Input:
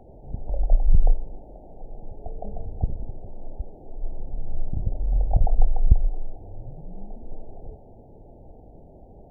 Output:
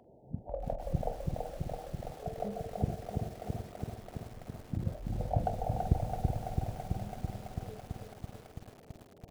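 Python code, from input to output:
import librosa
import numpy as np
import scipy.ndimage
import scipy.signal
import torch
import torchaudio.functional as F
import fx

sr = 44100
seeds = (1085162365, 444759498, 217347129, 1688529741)

p1 = fx.doubler(x, sr, ms=44.0, db=-14)
p2 = np.clip(10.0 ** (23.0 / 20.0) * p1, -1.0, 1.0) / 10.0 ** (23.0 / 20.0)
p3 = p1 + (p2 * librosa.db_to_amplitude(-11.0))
p4 = fx.notch(p3, sr, hz=800.0, q=22.0)
p5 = fx.noise_reduce_blind(p4, sr, reduce_db=11)
p6 = scipy.signal.sosfilt(scipy.signal.butter(2, 130.0, 'highpass', fs=sr, output='sos'), p5)
p7 = p6 + fx.echo_feedback(p6, sr, ms=384, feedback_pct=58, wet_db=-9.0, dry=0)
y = fx.echo_crushed(p7, sr, ms=332, feedback_pct=80, bits=9, wet_db=-3.5)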